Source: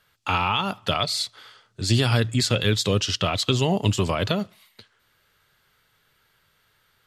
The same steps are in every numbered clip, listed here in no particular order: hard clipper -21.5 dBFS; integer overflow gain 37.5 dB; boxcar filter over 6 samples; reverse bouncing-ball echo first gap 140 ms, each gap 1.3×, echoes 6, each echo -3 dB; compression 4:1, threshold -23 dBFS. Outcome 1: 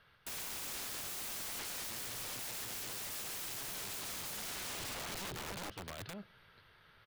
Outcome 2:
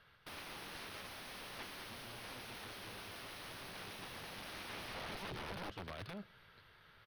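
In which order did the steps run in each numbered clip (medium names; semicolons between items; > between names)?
boxcar filter > compression > reverse bouncing-ball echo > hard clipper > integer overflow; compression > reverse bouncing-ball echo > hard clipper > integer overflow > boxcar filter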